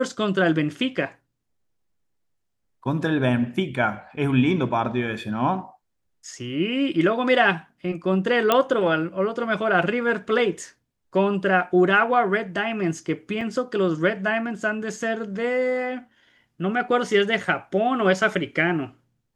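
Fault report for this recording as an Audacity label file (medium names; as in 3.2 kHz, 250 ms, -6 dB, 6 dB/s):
8.520000	8.520000	pop -5 dBFS
13.410000	13.410000	dropout 3.1 ms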